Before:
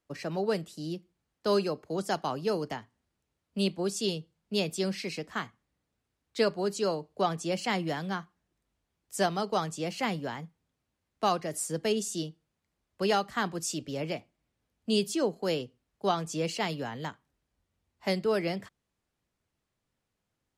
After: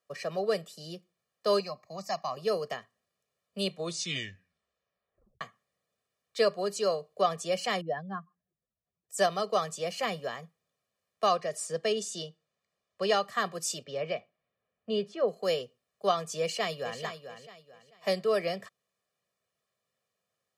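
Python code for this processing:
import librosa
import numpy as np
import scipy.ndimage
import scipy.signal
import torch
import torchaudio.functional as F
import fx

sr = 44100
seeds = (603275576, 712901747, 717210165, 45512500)

y = fx.fixed_phaser(x, sr, hz=2200.0, stages=8, at=(1.6, 2.37))
y = fx.spec_expand(y, sr, power=2.0, at=(7.81, 9.18))
y = fx.lowpass(y, sr, hz=7500.0, slope=12, at=(11.26, 13.23))
y = fx.lowpass(y, sr, hz=fx.line((13.83, 4300.0), (15.27, 1800.0)), slope=12, at=(13.83, 15.27), fade=0.02)
y = fx.echo_throw(y, sr, start_s=16.41, length_s=0.61, ms=440, feedback_pct=30, wet_db=-9.5)
y = fx.edit(y, sr, fx.tape_stop(start_s=3.65, length_s=1.76), tone=tone)
y = scipy.signal.sosfilt(scipy.signal.butter(2, 230.0, 'highpass', fs=sr, output='sos'), y)
y = y + 0.87 * np.pad(y, (int(1.7 * sr / 1000.0), 0))[:len(y)]
y = F.gain(torch.from_numpy(y), -1.5).numpy()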